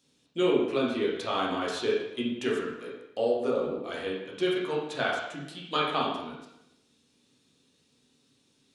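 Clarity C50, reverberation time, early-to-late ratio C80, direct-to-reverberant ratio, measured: 2.0 dB, 0.85 s, 5.0 dB, -5.5 dB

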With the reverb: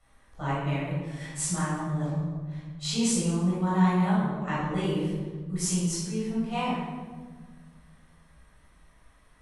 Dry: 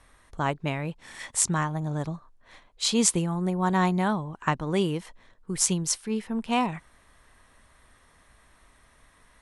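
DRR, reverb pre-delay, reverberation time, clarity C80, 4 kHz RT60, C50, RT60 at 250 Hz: -9.5 dB, 16 ms, 1.5 s, 2.0 dB, 0.90 s, -1.5 dB, 2.3 s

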